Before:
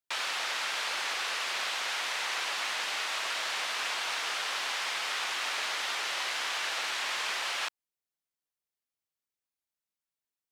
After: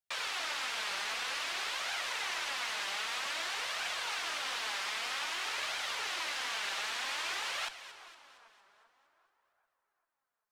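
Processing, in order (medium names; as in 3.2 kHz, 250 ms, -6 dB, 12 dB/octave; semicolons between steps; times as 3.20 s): octave divider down 1 oct, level -4 dB; two-band feedback delay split 1.5 kHz, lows 394 ms, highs 230 ms, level -13 dB; flange 0.52 Hz, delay 1.2 ms, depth 4 ms, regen +47%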